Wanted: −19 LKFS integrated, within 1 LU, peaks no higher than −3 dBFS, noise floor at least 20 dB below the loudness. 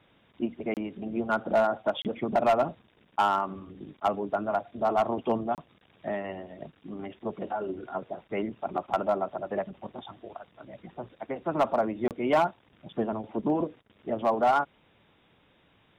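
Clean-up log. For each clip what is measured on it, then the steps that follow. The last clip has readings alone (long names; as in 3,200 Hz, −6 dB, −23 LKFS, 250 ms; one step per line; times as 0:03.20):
share of clipped samples 0.5%; peaks flattened at −17.0 dBFS; number of dropouts 4; longest dropout 28 ms; integrated loudness −29.5 LKFS; sample peak −17.0 dBFS; target loudness −19.0 LKFS
→ clipped peaks rebuilt −17 dBFS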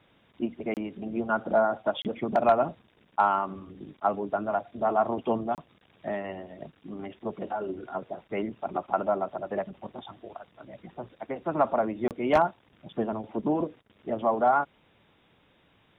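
share of clipped samples 0.0%; number of dropouts 4; longest dropout 28 ms
→ repair the gap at 0:00.74/0:02.02/0:05.55/0:12.08, 28 ms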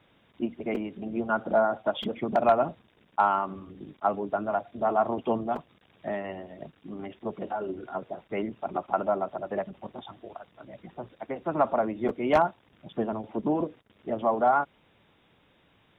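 number of dropouts 0; integrated loudness −29.0 LKFS; sample peak −8.0 dBFS; target loudness −19.0 LKFS
→ level +10 dB
brickwall limiter −3 dBFS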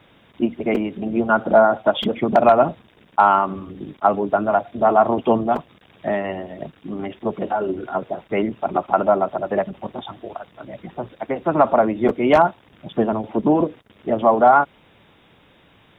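integrated loudness −19.5 LKFS; sample peak −3.0 dBFS; background noise floor −54 dBFS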